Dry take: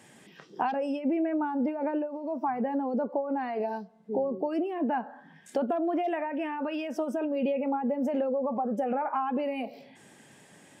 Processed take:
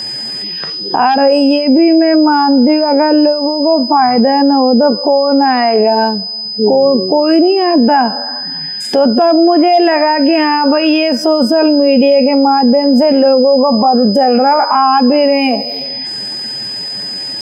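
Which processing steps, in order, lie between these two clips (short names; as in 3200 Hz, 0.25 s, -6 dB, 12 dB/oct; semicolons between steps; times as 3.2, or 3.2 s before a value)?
whine 5000 Hz -41 dBFS; tempo 0.62×; maximiser +23 dB; gain -1 dB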